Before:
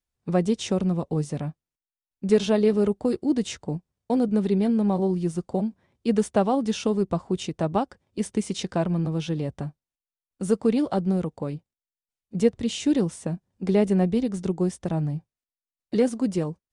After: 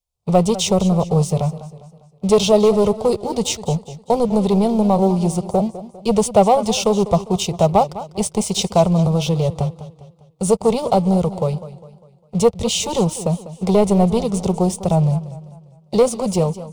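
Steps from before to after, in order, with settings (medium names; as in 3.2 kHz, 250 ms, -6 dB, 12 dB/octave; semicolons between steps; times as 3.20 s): waveshaping leveller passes 2; static phaser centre 690 Hz, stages 4; modulated delay 201 ms, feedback 43%, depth 114 cents, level -15 dB; trim +7 dB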